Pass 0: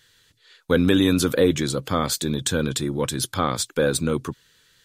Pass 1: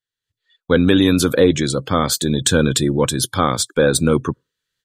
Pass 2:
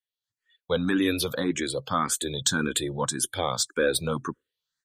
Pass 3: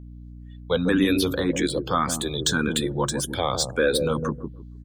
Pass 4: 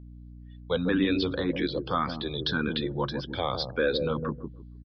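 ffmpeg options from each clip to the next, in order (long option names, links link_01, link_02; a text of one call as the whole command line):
ffmpeg -i in.wav -af "afftdn=noise_reduction=32:noise_floor=-40,dynaudnorm=framelen=230:gausssize=3:maxgain=16dB,volume=-1dB" out.wav
ffmpeg -i in.wav -filter_complex "[0:a]lowshelf=frequency=370:gain=-9,asplit=2[link_01][link_02];[link_02]afreqshift=1.8[link_03];[link_01][link_03]amix=inputs=2:normalize=1,volume=-3.5dB" out.wav
ffmpeg -i in.wav -filter_complex "[0:a]acrossover=split=750|6300[link_01][link_02][link_03];[link_01]aecho=1:1:155|310|465:0.708|0.149|0.0312[link_04];[link_03]asoftclip=type=tanh:threshold=-31dB[link_05];[link_04][link_02][link_05]amix=inputs=3:normalize=0,aeval=exprs='val(0)+0.00794*(sin(2*PI*60*n/s)+sin(2*PI*2*60*n/s)/2+sin(2*PI*3*60*n/s)/3+sin(2*PI*4*60*n/s)/4+sin(2*PI*5*60*n/s)/5)':channel_layout=same,volume=2.5dB" out.wav
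ffmpeg -i in.wav -af "aresample=11025,aresample=44100,volume=-4.5dB" out.wav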